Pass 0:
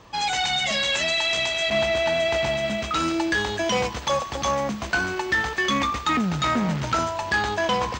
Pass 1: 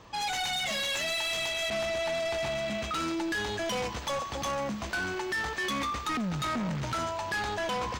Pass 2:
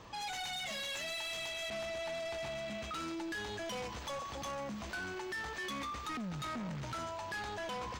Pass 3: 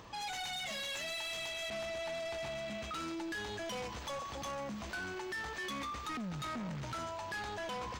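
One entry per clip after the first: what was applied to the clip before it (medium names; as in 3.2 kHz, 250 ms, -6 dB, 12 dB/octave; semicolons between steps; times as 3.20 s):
saturation -25 dBFS, distortion -10 dB; trim -3 dB
peak limiter -36 dBFS, peak gain reduction 8 dB; trim -1 dB
upward compressor, threshold -55 dBFS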